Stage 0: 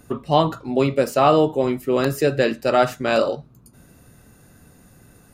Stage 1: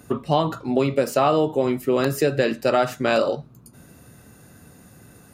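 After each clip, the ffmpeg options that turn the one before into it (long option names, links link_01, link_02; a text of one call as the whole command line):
ffmpeg -i in.wav -af "highpass=70,acompressor=threshold=-19dB:ratio=3,volume=2.5dB" out.wav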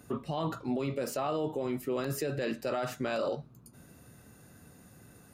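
ffmpeg -i in.wav -af "alimiter=limit=-17dB:level=0:latency=1:release=14,volume=-7dB" out.wav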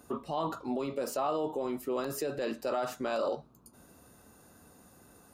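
ffmpeg -i in.wav -af "equalizer=frequency=125:width_type=o:width=1:gain=-11,equalizer=frequency=1000:width_type=o:width=1:gain=5,equalizer=frequency=2000:width_type=o:width=1:gain=-6" out.wav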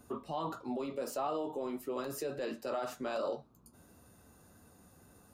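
ffmpeg -i in.wav -filter_complex "[0:a]acrossover=split=170[link_01][link_02];[link_01]acompressor=mode=upward:threshold=-54dB:ratio=2.5[link_03];[link_03][link_02]amix=inputs=2:normalize=0,flanger=delay=8.5:depth=4.1:regen=-52:speed=1.5:shape=triangular" out.wav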